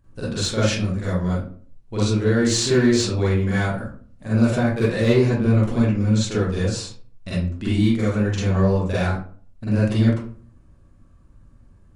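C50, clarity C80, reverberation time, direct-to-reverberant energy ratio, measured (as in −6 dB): −1.5 dB, 5.0 dB, 0.45 s, −9.5 dB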